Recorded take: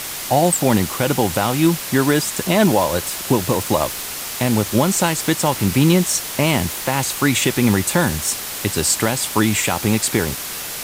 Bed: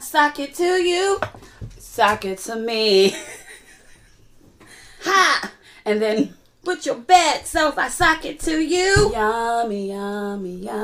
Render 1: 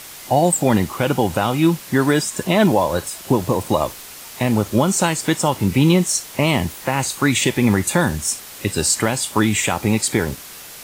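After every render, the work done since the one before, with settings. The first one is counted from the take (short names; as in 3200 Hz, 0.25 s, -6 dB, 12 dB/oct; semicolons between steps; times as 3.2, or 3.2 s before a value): noise print and reduce 9 dB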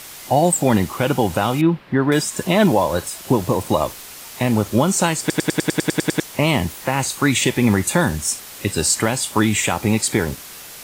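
1.61–2.12 air absorption 420 m; 5.2 stutter in place 0.10 s, 10 plays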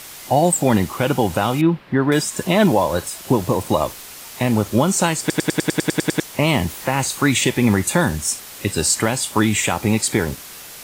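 6.48–7.41 G.711 law mismatch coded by mu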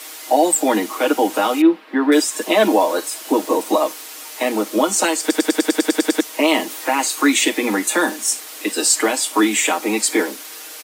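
steep high-pass 220 Hz 96 dB/oct; comb 6.4 ms, depth 85%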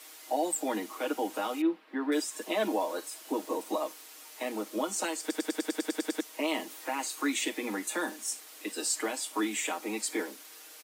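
gain -15 dB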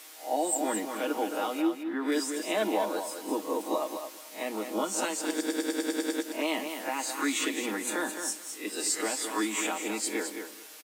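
spectral swells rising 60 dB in 0.30 s; feedback echo 0.215 s, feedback 16%, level -7.5 dB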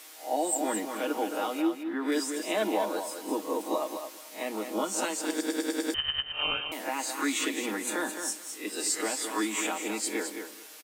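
5.94–6.72 inverted band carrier 3400 Hz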